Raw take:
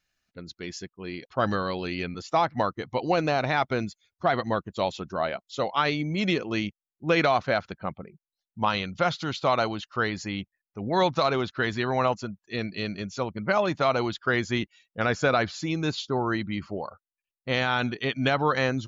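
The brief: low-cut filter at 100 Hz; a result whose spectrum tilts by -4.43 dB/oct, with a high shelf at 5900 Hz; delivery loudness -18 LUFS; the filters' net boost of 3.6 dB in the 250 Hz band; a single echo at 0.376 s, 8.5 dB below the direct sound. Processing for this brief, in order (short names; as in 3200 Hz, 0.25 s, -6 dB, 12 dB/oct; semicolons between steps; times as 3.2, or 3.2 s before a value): HPF 100 Hz; bell 250 Hz +5 dB; high shelf 5900 Hz -8 dB; echo 0.376 s -8.5 dB; gain +8 dB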